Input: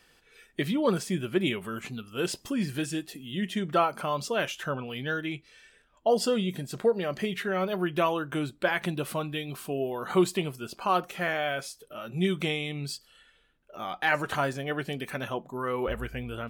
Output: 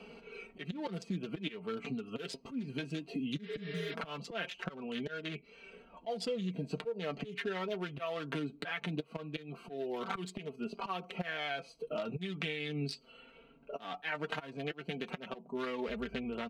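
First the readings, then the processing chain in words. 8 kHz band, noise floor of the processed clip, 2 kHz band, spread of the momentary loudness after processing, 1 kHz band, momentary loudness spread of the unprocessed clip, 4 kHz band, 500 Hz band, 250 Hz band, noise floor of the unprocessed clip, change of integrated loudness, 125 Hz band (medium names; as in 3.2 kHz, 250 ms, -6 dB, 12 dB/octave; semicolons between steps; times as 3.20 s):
-16.0 dB, -61 dBFS, -9.0 dB, 8 LU, -12.0 dB, 10 LU, -7.5 dB, -10.5 dB, -8.5 dB, -63 dBFS, -9.5 dB, -8.5 dB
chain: local Wiener filter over 25 samples; frequency weighting D; spectral replace 3.46–3.91 s, 320–5600 Hz before; treble shelf 2.4 kHz -10 dB; comb 4.4 ms, depth 60%; slow attack 712 ms; compression 10:1, threshold -42 dBFS, peak gain reduction 14 dB; flange 0.19 Hz, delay 4.7 ms, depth 3.1 ms, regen +33%; three bands compressed up and down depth 40%; trim +12.5 dB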